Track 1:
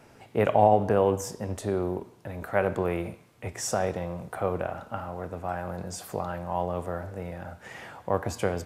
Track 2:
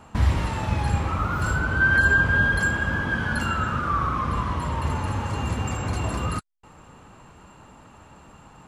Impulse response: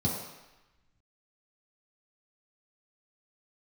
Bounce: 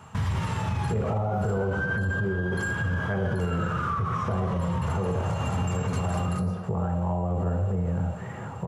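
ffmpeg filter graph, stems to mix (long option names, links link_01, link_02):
-filter_complex "[0:a]lowpass=1600,adelay=550,volume=3dB,asplit=2[link_01][link_02];[link_02]volume=-9.5dB[link_03];[1:a]lowshelf=frequency=390:gain=-10,acompressor=threshold=-25dB:ratio=4,volume=2dB,asplit=2[link_04][link_05];[link_05]volume=-13dB[link_06];[2:a]atrim=start_sample=2205[link_07];[link_03][link_06]amix=inputs=2:normalize=0[link_08];[link_08][link_07]afir=irnorm=-1:irlink=0[link_09];[link_01][link_04][link_09]amix=inputs=3:normalize=0,alimiter=limit=-19.5dB:level=0:latency=1:release=77"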